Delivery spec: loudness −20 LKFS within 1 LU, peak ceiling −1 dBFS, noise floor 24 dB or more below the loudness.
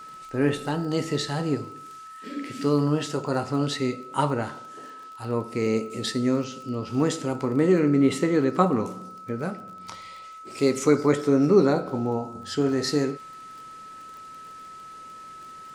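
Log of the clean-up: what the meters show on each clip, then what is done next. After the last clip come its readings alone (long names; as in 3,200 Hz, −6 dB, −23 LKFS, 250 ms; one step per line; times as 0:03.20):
crackle rate 21 per second; interfering tone 1,300 Hz; level of the tone −40 dBFS; integrated loudness −25.0 LKFS; sample peak −4.5 dBFS; target loudness −20.0 LKFS
→ click removal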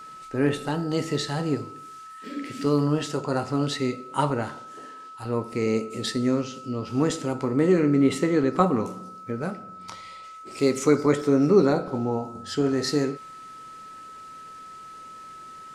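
crackle rate 0 per second; interfering tone 1,300 Hz; level of the tone −40 dBFS
→ notch filter 1,300 Hz, Q 30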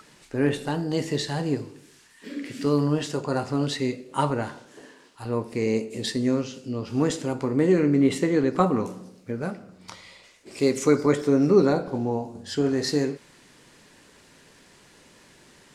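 interfering tone none found; integrated loudness −25.0 LKFS; sample peak −5.0 dBFS; target loudness −20.0 LKFS
→ level +5 dB
brickwall limiter −1 dBFS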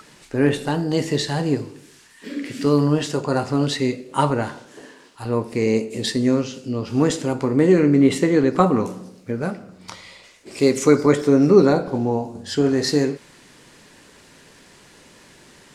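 integrated loudness −20.0 LKFS; sample peak −1.0 dBFS; background noise floor −50 dBFS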